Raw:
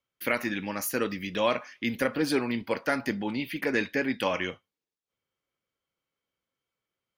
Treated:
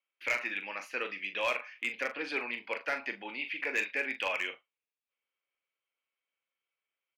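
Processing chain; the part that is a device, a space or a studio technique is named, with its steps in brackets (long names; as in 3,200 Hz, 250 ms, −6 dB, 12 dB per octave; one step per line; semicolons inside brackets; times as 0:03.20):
megaphone (band-pass filter 540–3,500 Hz; parametric band 2,500 Hz +11.5 dB 0.52 octaves; hard clipping −16.5 dBFS, distortion −18 dB; double-tracking delay 41 ms −10 dB)
level −6 dB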